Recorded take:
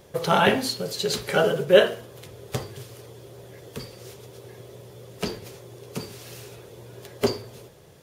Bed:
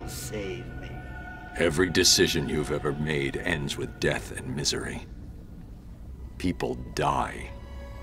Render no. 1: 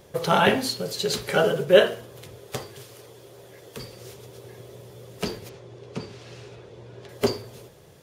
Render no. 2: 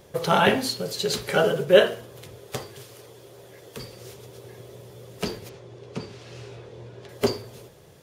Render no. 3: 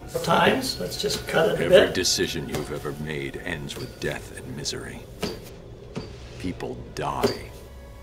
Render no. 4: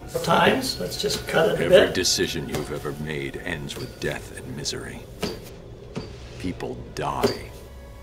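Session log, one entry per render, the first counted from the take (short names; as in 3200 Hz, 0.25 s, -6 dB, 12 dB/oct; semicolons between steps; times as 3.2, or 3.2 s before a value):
2.38–3.79 low shelf 220 Hz -9 dB; 5.49–7.09 air absorption 110 m
6.32–6.89 doubler 25 ms -5 dB
add bed -3 dB
gain +1 dB; limiter -3 dBFS, peak gain reduction 1 dB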